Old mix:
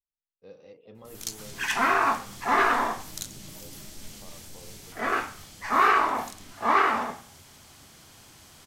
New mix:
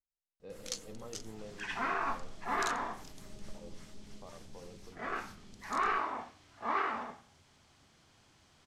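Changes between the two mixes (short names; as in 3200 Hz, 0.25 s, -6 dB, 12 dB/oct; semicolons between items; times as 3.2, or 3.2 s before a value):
first sound: entry -0.55 s; second sound -11.0 dB; master: add air absorption 74 m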